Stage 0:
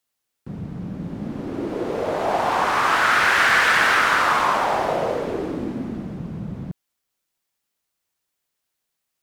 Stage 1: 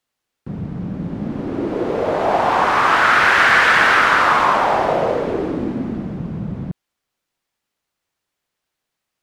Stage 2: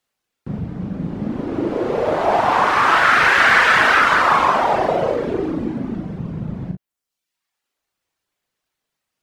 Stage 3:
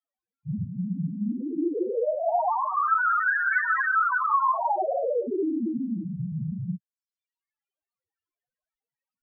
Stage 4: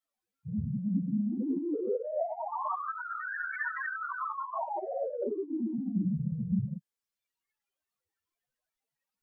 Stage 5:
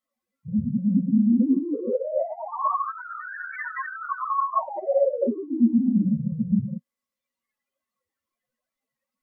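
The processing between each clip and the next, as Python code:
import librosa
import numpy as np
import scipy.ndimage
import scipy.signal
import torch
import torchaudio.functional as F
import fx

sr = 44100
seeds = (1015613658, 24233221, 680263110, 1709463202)

y1 = fx.lowpass(x, sr, hz=3500.0, slope=6)
y1 = y1 * librosa.db_to_amplitude(5.0)
y2 = fx.dereverb_blind(y1, sr, rt60_s=0.95)
y2 = fx.room_early_taps(y2, sr, ms=(38, 54), db=(-5.5, -15.0))
y2 = y2 * librosa.db_to_amplitude(1.0)
y3 = fx.spec_topn(y2, sr, count=2)
y4 = fx.over_compress(y3, sr, threshold_db=-32.0, ratio=-1.0)
y4 = fx.ensemble(y4, sr)
y4 = y4 * librosa.db_to_amplitude(1.5)
y5 = fx.small_body(y4, sr, hz=(240.0, 540.0, 1100.0, 2000.0), ring_ms=75, db=17)
y5 = fx.wow_flutter(y5, sr, seeds[0], rate_hz=2.1, depth_cents=19.0)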